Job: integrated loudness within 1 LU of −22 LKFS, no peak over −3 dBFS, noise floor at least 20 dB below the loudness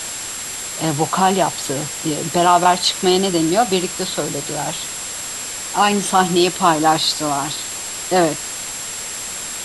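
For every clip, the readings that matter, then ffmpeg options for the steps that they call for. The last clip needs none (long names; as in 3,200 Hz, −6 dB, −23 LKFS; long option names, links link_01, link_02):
interfering tone 7,600 Hz; level of the tone −29 dBFS; background noise floor −28 dBFS; target noise floor −39 dBFS; integrated loudness −18.5 LKFS; sample peak −1.5 dBFS; target loudness −22.0 LKFS
→ -af "bandreject=frequency=7600:width=30"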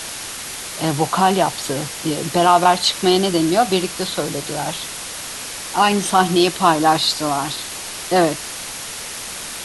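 interfering tone none found; background noise floor −31 dBFS; target noise floor −39 dBFS
→ -af "afftdn=noise_reduction=8:noise_floor=-31"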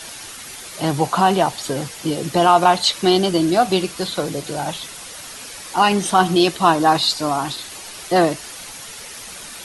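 background noise floor −36 dBFS; target noise floor −38 dBFS
→ -af "afftdn=noise_reduction=6:noise_floor=-36"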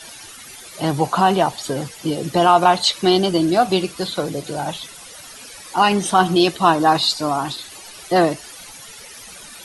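background noise floor −39 dBFS; integrated loudness −18.0 LKFS; sample peak −2.0 dBFS; target loudness −22.0 LKFS
→ -af "volume=-4dB"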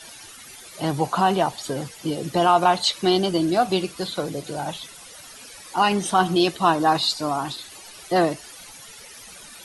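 integrated loudness −22.0 LKFS; sample peak −6.0 dBFS; background noise floor −43 dBFS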